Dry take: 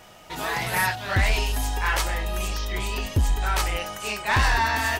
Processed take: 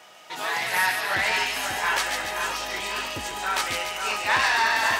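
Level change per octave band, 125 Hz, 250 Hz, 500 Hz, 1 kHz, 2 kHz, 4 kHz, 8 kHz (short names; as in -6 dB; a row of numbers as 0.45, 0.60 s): -19.0, -6.5, -1.0, +1.0, +2.5, +3.0, +1.0 dB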